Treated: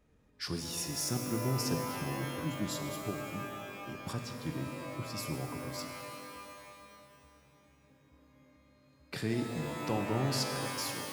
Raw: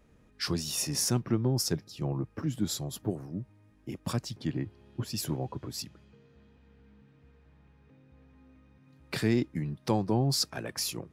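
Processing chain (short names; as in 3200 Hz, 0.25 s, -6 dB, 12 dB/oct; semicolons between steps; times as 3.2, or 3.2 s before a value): shimmer reverb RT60 2.5 s, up +12 st, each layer -2 dB, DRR 5 dB; gain -6.5 dB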